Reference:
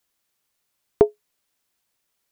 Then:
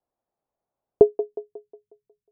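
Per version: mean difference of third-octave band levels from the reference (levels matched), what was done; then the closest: 3.5 dB: low-pass sweep 720 Hz -> 140 Hz, 0.91–1.54; on a send: band-limited delay 0.181 s, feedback 44%, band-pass 720 Hz, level -11.5 dB; on the sum: gain -3.5 dB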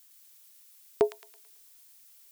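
7.5 dB: tilt +4 dB/oct; limiter -14.5 dBFS, peak gain reduction 8 dB; thin delay 0.11 s, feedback 42%, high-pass 2100 Hz, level -4 dB; gain +3 dB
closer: first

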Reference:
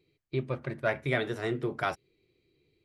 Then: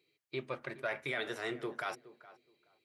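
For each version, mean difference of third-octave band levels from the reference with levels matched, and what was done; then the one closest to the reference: 5.5 dB: HPF 880 Hz 6 dB/oct; limiter -26 dBFS, peak gain reduction 9 dB; tape echo 0.421 s, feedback 20%, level -15.5 dB, low-pass 1400 Hz; gain +1 dB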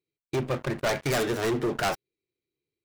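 7.5 dB: tracing distortion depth 0.39 ms; low shelf 110 Hz -8 dB; sample leveller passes 5; gain -7.5 dB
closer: first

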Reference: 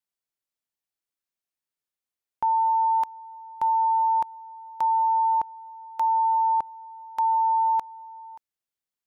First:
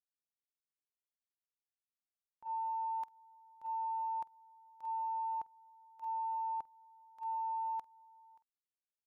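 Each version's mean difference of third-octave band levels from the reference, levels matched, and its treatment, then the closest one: 1.0 dB: compressor 3:1, threshold -29 dBFS, peak gain reduction 6.5 dB; doubler 48 ms -13 dB; limiter -27.5 dBFS, peak gain reduction 8.5 dB; gate -29 dBFS, range -28 dB; gain +7 dB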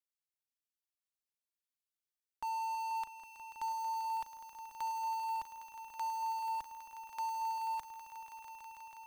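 10.5 dB: bell 120 Hz -13.5 dB 0.9 oct; in parallel at -11 dB: companded quantiser 2-bit; on the sum: bell 510 Hz -12.5 dB 2.6 oct; swelling echo 0.162 s, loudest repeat 5, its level -12 dB; gain -7.5 dB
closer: first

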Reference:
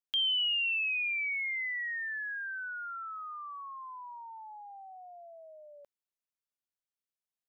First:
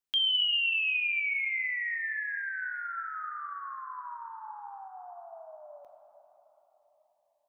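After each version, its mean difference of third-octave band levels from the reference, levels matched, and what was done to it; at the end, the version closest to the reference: 3.0 dB: plate-style reverb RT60 4.2 s, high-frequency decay 0.4×, DRR 5.5 dB; gain +2 dB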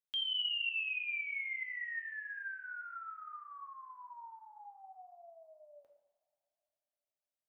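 1.5 dB: two-slope reverb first 0.8 s, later 3.4 s, from -25 dB, DRR 3 dB; gain -7.5 dB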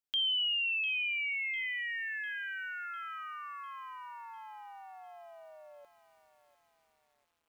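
5.5 dB: lo-fi delay 0.7 s, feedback 55%, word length 10-bit, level -14 dB; gain -1.5 dB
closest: second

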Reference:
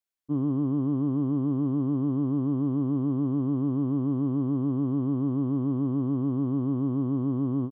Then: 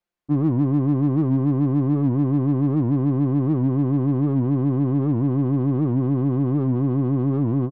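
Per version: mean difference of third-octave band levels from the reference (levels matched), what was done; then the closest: 2.5 dB: LPF 1200 Hz 6 dB/oct; comb 5.7 ms, depth 46%; in parallel at -5 dB: soft clip -39 dBFS, distortion -5 dB; on the sum: record warp 78 rpm, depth 160 cents; gain +7 dB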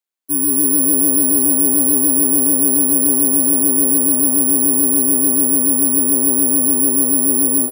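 7.5 dB: careless resampling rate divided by 4×, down filtered, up zero stuff; HPF 190 Hz 24 dB/oct; AGC gain up to 3.5 dB; frequency-shifting echo 0.159 s, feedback 59%, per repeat +120 Hz, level -12 dB; gain +2.5 dB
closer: first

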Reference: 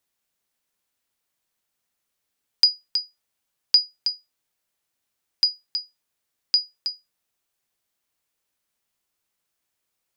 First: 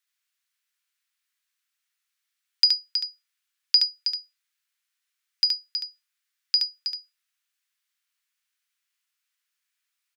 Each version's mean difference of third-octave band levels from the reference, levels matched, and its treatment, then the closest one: 3.5 dB: HPF 1400 Hz 24 dB/oct; high shelf 5500 Hz -7 dB; on a send: echo 72 ms -4 dB; on the sum: gain +1.5 dB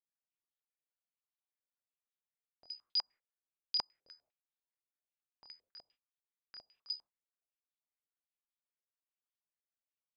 6.0 dB: gate -46 dBFS, range -24 dB; reverse; compressor 10:1, threshold -27 dBFS, peak gain reduction 16.5 dB; reverse; chorus 0.67 Hz, delay 20 ms, depth 7.9 ms; stepped low-pass 10 Hz 520–3600 Hz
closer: first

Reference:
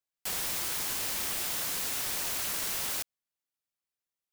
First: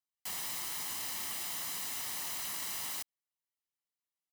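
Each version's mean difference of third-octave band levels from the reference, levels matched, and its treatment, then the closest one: 2.0 dB: HPF 180 Hz 6 dB/oct; comb 1 ms, depth 48%; gain -6.5 dB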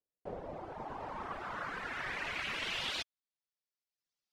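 13.0 dB: reverb removal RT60 1 s; low-pass sweep 460 Hz -> 5200 Hz, 0.05–3.55; gain +1 dB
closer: first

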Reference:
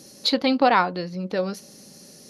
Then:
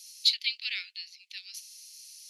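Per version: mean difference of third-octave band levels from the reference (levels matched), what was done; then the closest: 16.5 dB: steep high-pass 2300 Hz 48 dB/oct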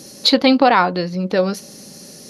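1.5 dB: maximiser +9 dB; gain -1 dB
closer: second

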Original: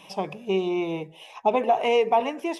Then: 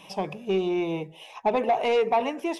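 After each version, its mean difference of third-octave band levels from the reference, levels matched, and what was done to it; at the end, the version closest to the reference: 1.5 dB: low shelf 150 Hz +3.5 dB; soft clip -15 dBFS, distortion -17 dB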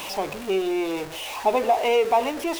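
9.0 dB: zero-crossing step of -29 dBFS; bell 170 Hz -14 dB 0.51 oct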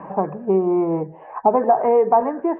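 6.5 dB: Chebyshev low-pass 1700 Hz, order 5; three-band squash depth 40%; gain +6.5 dB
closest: first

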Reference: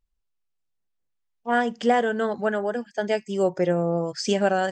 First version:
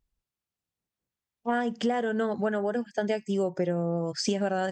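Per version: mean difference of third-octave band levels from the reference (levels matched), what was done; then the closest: 2.0 dB: HPF 130 Hz 6 dB/oct; low shelf 240 Hz +10.5 dB; compressor, threshold -24 dBFS, peak gain reduction 11 dB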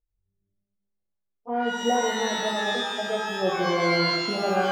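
11.5 dB: envelope phaser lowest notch 180 Hz, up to 1500 Hz, full sweep at -28 dBFS; resonant high shelf 1800 Hz -12 dB, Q 1.5; shimmer reverb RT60 1.2 s, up +12 st, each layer -2 dB, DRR 0.5 dB; gain -5.5 dB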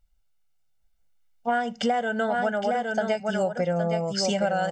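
5.5 dB: comb 1.4 ms, depth 69%; on a send: echo 0.814 s -6 dB; on the sum: compressor 6:1, threshold -28 dBFS, peak gain reduction 14 dB; gain +5.5 dB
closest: first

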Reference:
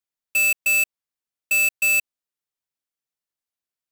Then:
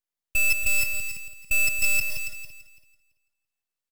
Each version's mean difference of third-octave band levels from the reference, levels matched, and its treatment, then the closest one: 3.5 dB: regenerating reverse delay 0.167 s, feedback 41%, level -7 dB; half-wave rectifier; on a send: echo 0.279 s -10.5 dB; on the sum: gain +2 dB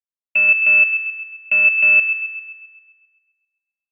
9.5 dB: gate with hold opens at -19 dBFS; steep low-pass 2900 Hz 72 dB/oct; on a send: thin delay 0.132 s, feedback 54%, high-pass 2200 Hz, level -3.5 dB; on the sum: gain +5.5 dB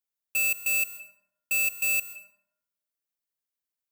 1.5 dB: high shelf 11000 Hz +9 dB; limiter -14 dBFS, peak gain reduction 3.5 dB; plate-style reverb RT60 0.87 s, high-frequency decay 0.45×, pre-delay 0.12 s, DRR 11 dB; gain -4.5 dB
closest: third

